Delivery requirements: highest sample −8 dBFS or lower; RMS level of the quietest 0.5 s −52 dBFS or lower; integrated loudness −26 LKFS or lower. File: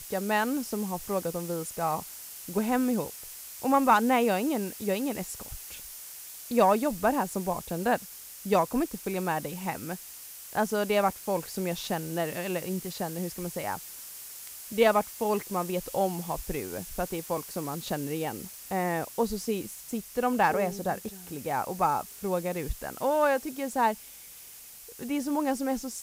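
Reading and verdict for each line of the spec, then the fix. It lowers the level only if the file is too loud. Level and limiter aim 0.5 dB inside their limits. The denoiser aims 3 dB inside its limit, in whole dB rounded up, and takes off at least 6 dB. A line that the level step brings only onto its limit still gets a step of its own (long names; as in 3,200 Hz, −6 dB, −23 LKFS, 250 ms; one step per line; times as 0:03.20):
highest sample −8.5 dBFS: in spec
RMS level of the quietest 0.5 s −48 dBFS: out of spec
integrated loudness −29.5 LKFS: in spec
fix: broadband denoise 7 dB, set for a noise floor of −48 dBFS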